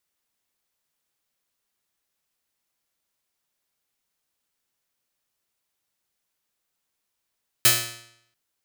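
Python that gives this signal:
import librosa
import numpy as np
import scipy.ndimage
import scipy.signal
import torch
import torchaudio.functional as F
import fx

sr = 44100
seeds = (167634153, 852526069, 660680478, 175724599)

y = fx.pluck(sr, length_s=0.69, note=46, decay_s=0.73, pick=0.43, brightness='bright')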